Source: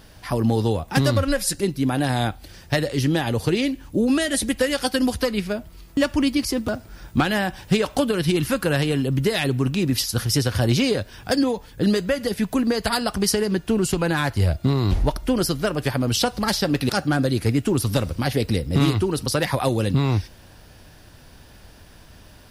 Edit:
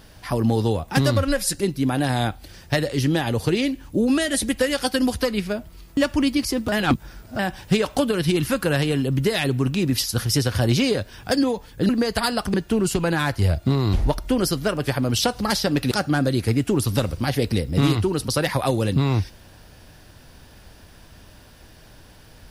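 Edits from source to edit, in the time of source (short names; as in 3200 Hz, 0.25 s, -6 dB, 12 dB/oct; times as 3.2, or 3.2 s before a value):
6.72–7.39 reverse
11.89–12.58 cut
13.23–13.52 cut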